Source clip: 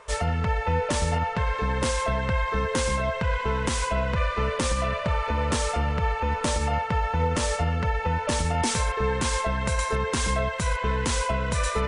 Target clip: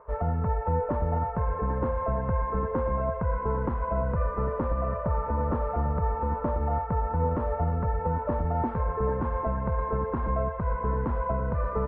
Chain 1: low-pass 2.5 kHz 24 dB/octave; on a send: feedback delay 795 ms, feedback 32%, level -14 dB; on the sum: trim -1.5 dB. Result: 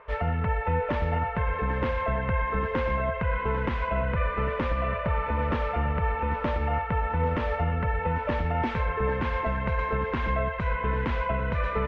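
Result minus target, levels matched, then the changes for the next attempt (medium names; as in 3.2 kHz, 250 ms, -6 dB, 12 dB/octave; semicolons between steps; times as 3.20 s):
2 kHz band +11.5 dB
change: low-pass 1.2 kHz 24 dB/octave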